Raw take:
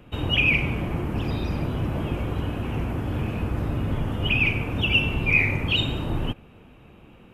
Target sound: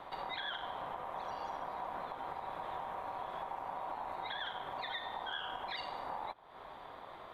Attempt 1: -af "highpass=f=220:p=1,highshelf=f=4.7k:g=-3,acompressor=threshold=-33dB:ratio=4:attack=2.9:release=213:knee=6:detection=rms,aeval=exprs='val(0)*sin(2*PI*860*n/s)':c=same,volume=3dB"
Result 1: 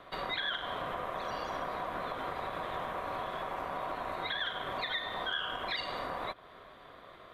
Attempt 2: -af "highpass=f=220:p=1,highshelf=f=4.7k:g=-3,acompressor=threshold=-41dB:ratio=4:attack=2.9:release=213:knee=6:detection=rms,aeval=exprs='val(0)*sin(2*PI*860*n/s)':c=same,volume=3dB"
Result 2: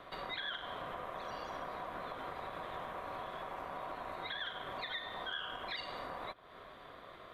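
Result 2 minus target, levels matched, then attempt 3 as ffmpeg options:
250 Hz band +3.0 dB
-af "highshelf=f=4.7k:g=-3,acompressor=threshold=-41dB:ratio=4:attack=2.9:release=213:knee=6:detection=rms,aeval=exprs='val(0)*sin(2*PI*860*n/s)':c=same,volume=3dB"

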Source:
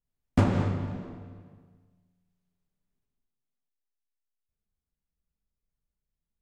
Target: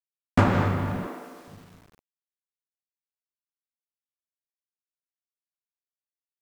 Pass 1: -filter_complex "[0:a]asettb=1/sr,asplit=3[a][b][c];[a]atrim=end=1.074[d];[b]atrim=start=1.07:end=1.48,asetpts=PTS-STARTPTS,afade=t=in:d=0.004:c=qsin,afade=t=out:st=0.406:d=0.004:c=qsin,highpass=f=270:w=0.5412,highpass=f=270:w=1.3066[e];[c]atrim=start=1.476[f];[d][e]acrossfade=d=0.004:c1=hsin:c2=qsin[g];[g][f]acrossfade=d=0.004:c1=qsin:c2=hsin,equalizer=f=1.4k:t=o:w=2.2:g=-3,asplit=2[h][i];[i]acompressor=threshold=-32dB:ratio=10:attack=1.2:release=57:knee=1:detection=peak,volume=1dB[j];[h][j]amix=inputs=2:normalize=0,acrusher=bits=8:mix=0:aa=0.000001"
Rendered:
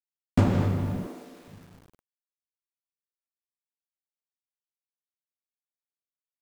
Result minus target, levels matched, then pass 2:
1000 Hz band -7.5 dB
-filter_complex "[0:a]asettb=1/sr,asplit=3[a][b][c];[a]atrim=end=1.074[d];[b]atrim=start=1.07:end=1.48,asetpts=PTS-STARTPTS,afade=t=in:d=0.004:c=qsin,afade=t=out:st=0.406:d=0.004:c=qsin,highpass=f=270:w=0.5412,highpass=f=270:w=1.3066[e];[c]atrim=start=1.476[f];[d][e]acrossfade=d=0.004:c1=hsin:c2=qsin[g];[g][f]acrossfade=d=0.004:c1=qsin:c2=hsin,equalizer=f=1.4k:t=o:w=2.2:g=8.5,asplit=2[h][i];[i]acompressor=threshold=-32dB:ratio=10:attack=1.2:release=57:knee=1:detection=peak,volume=1dB[j];[h][j]amix=inputs=2:normalize=0,acrusher=bits=8:mix=0:aa=0.000001"

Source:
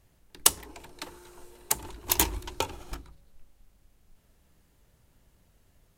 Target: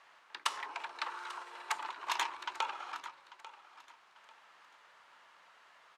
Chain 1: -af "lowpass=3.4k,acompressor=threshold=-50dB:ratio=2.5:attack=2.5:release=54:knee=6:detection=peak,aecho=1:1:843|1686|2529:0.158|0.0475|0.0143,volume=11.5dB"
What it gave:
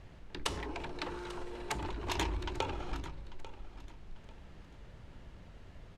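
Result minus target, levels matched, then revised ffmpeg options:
1000 Hz band -3.0 dB
-af "lowpass=3.4k,acompressor=threshold=-50dB:ratio=2.5:attack=2.5:release=54:knee=6:detection=peak,highpass=f=1.1k:t=q:w=2.1,aecho=1:1:843|1686|2529:0.158|0.0475|0.0143,volume=11.5dB"

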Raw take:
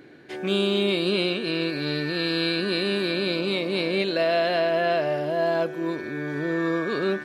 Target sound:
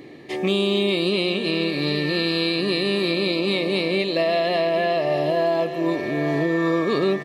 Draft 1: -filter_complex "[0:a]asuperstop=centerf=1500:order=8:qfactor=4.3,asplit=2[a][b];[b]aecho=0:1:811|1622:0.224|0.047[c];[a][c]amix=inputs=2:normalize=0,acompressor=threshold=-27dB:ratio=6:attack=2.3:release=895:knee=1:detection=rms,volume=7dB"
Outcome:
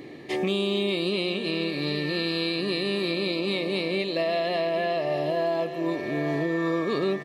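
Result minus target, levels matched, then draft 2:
compressor: peak gain reduction +5 dB
-filter_complex "[0:a]asuperstop=centerf=1500:order=8:qfactor=4.3,asplit=2[a][b];[b]aecho=0:1:811|1622:0.224|0.047[c];[a][c]amix=inputs=2:normalize=0,acompressor=threshold=-21dB:ratio=6:attack=2.3:release=895:knee=1:detection=rms,volume=7dB"

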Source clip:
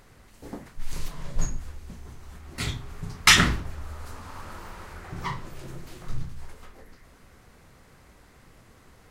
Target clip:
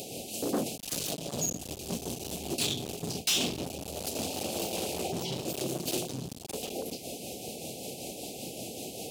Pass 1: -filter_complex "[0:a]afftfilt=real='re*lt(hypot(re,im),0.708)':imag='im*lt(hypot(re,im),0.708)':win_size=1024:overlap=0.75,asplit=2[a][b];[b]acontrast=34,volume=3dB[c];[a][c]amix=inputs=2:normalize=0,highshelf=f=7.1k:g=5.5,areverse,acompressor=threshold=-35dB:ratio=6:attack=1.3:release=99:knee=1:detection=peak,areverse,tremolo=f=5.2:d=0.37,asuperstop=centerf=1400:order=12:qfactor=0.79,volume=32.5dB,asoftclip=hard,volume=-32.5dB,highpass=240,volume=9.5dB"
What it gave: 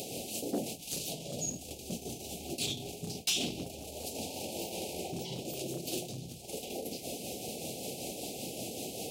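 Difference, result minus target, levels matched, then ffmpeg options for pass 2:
compressor: peak gain reduction +6.5 dB
-filter_complex "[0:a]afftfilt=real='re*lt(hypot(re,im),0.708)':imag='im*lt(hypot(re,im),0.708)':win_size=1024:overlap=0.75,asplit=2[a][b];[b]acontrast=34,volume=3dB[c];[a][c]amix=inputs=2:normalize=0,highshelf=f=7.1k:g=5.5,areverse,acompressor=threshold=-27dB:ratio=6:attack=1.3:release=99:knee=1:detection=peak,areverse,tremolo=f=5.2:d=0.37,asuperstop=centerf=1400:order=12:qfactor=0.79,volume=32.5dB,asoftclip=hard,volume=-32.5dB,highpass=240,volume=9.5dB"

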